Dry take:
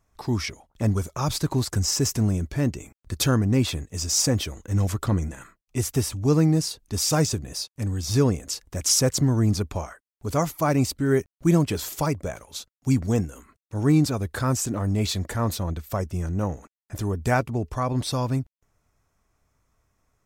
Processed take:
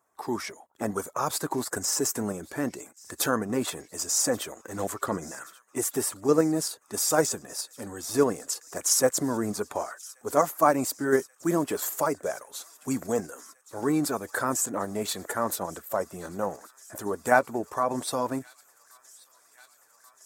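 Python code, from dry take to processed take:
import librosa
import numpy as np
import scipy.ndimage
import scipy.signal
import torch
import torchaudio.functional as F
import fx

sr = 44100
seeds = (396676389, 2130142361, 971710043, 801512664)

p1 = fx.spec_quant(x, sr, step_db=15)
p2 = scipy.signal.sosfilt(scipy.signal.butter(2, 420.0, 'highpass', fs=sr, output='sos'), p1)
p3 = fx.band_shelf(p2, sr, hz=3600.0, db=-9.5, octaves=1.7)
p4 = fx.echo_wet_highpass(p3, sr, ms=1131, feedback_pct=84, hz=2000.0, wet_db=-22.5)
p5 = fx.level_steps(p4, sr, step_db=12)
y = p4 + (p5 * 10.0 ** (-0.5 / 20.0))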